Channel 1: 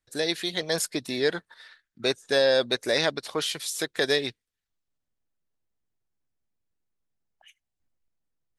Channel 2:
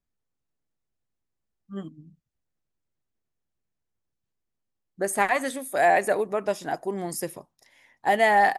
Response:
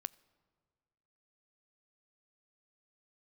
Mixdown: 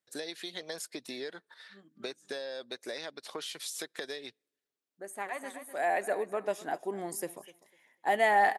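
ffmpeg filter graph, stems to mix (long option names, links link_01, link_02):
-filter_complex "[0:a]acompressor=threshold=-32dB:ratio=16,volume=-4dB,asplit=3[link_01][link_02][link_03];[link_02]volume=-17dB[link_04];[1:a]equalizer=frequency=5100:width=4.1:gain=-6.5,volume=-5dB,asplit=2[link_05][link_06];[link_06]volume=-19.5dB[link_07];[link_03]apad=whole_len=378538[link_08];[link_05][link_08]sidechaincompress=threshold=-58dB:ratio=3:attack=10:release=1450[link_09];[2:a]atrim=start_sample=2205[link_10];[link_04][link_10]afir=irnorm=-1:irlink=0[link_11];[link_07]aecho=0:1:250|500|750:1|0.2|0.04[link_12];[link_01][link_09][link_11][link_12]amix=inputs=4:normalize=0,highpass=240"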